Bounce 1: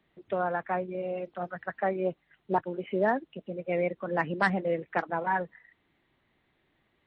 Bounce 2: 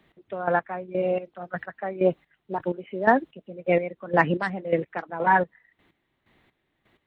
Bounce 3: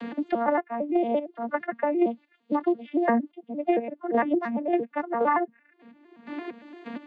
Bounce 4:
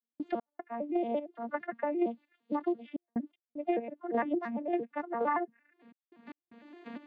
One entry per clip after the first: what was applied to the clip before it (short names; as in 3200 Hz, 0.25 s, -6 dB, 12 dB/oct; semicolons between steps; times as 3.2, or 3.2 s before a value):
step gate "x...x...x" 127 bpm -12 dB; gain +9 dB
arpeggiated vocoder major triad, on A#3, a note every 0.114 s; three-band squash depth 100%
step gate ".x.xxxxxxxxxxxx" 76 bpm -60 dB; gain -7 dB